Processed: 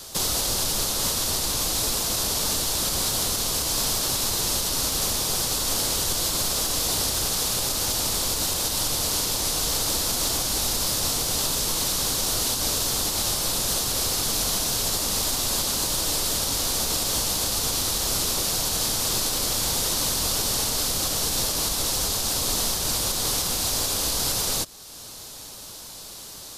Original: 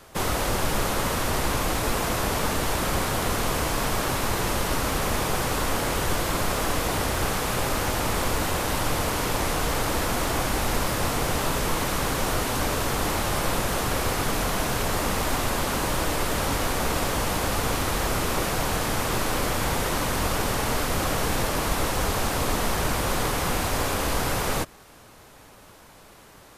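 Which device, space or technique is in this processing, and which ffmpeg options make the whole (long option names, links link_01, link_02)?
over-bright horn tweeter: -af "highshelf=frequency=3000:width_type=q:width=1.5:gain=12.5,alimiter=limit=-17dB:level=0:latency=1:release=440,volume=2.5dB"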